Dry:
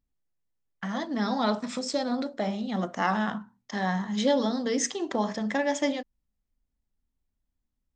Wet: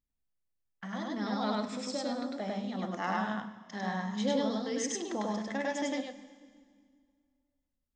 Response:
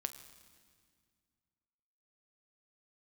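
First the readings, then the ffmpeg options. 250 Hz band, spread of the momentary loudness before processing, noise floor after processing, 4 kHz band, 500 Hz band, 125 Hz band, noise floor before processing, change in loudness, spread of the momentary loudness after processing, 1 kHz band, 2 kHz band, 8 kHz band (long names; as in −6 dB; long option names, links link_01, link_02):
−5.5 dB, 8 LU, −83 dBFS, −5.5 dB, −6.0 dB, −5.5 dB, −82 dBFS, −5.5 dB, 8 LU, −5.5 dB, −5.5 dB, −5.5 dB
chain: -filter_complex "[0:a]asplit=2[link_01][link_02];[1:a]atrim=start_sample=2205,adelay=100[link_03];[link_02][link_03]afir=irnorm=-1:irlink=0,volume=1dB[link_04];[link_01][link_04]amix=inputs=2:normalize=0,volume=-8.5dB"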